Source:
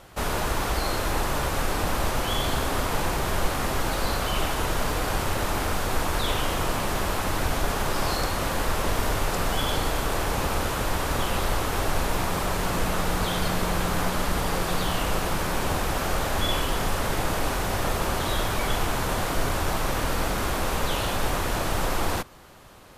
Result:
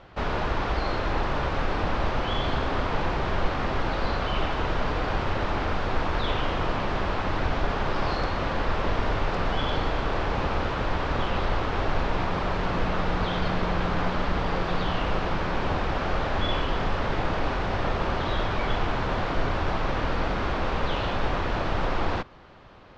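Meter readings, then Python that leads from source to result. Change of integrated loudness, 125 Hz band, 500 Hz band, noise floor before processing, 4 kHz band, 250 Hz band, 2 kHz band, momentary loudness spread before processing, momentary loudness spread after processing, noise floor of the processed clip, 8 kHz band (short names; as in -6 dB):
-1.0 dB, 0.0 dB, 0.0 dB, -28 dBFS, -4.0 dB, 0.0 dB, -1.0 dB, 1 LU, 1 LU, -29 dBFS, -20.0 dB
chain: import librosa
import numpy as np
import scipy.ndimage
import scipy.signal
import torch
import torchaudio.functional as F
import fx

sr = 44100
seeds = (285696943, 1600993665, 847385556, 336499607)

y = scipy.signal.sosfilt(scipy.signal.bessel(6, 3100.0, 'lowpass', norm='mag', fs=sr, output='sos'), x)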